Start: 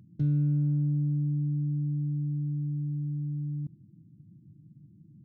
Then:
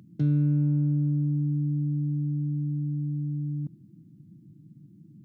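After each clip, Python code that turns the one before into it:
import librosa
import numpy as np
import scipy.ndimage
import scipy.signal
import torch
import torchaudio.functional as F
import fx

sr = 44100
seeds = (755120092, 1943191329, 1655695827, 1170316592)

y = scipy.signal.sosfilt(scipy.signal.bessel(2, 210.0, 'highpass', norm='mag', fs=sr, output='sos'), x)
y = y * 10.0 ** (8.0 / 20.0)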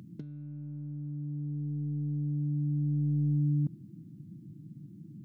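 y = fx.over_compress(x, sr, threshold_db=-30.0, ratio=-0.5)
y = y * 10.0 ** (-1.0 / 20.0)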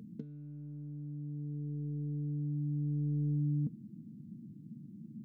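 y = fx.small_body(x, sr, hz=(230.0, 450.0), ring_ms=75, db=15)
y = y * 10.0 ** (-7.0 / 20.0)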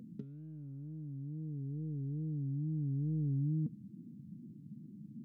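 y = fx.wow_flutter(x, sr, seeds[0], rate_hz=2.1, depth_cents=120.0)
y = y * 10.0 ** (-1.5 / 20.0)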